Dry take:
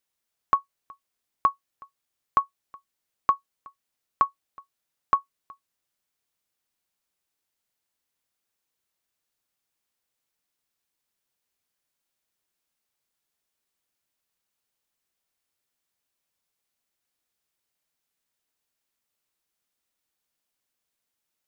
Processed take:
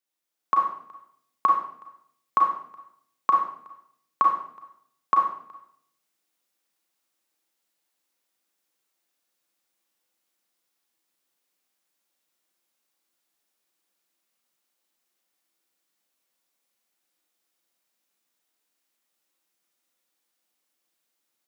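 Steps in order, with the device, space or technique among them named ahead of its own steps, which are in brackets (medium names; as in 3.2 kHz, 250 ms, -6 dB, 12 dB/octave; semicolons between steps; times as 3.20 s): far laptop microphone (reverberation RT60 0.60 s, pre-delay 32 ms, DRR -0.5 dB; high-pass 170 Hz 24 dB/octave; level rider gain up to 7 dB); trim -6 dB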